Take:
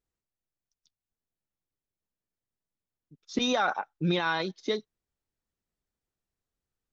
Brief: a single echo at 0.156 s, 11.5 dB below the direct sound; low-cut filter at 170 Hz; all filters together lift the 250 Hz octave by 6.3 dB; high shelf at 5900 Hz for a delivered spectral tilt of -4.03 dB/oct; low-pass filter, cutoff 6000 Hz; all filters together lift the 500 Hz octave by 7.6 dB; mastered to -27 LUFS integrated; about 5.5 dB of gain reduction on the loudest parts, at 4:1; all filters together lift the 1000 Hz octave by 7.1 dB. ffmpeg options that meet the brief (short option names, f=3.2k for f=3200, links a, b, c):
-af "highpass=170,lowpass=6k,equalizer=f=250:t=o:g=7.5,equalizer=f=500:t=o:g=5.5,equalizer=f=1k:t=o:g=7,highshelf=f=5.9k:g=-3.5,acompressor=threshold=-22dB:ratio=4,aecho=1:1:156:0.266,volume=0.5dB"